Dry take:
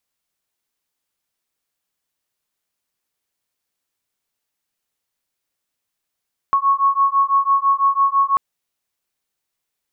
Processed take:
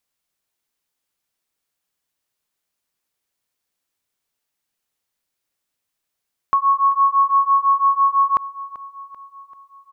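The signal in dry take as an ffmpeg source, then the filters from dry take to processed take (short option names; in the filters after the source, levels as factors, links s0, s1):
-f lavfi -i "aevalsrc='0.15*(sin(2*PI*1100*t)+sin(2*PI*1106*t))':d=1.84:s=44100"
-af "aecho=1:1:388|776|1164|1552|1940:0.141|0.0777|0.0427|0.0235|0.0129"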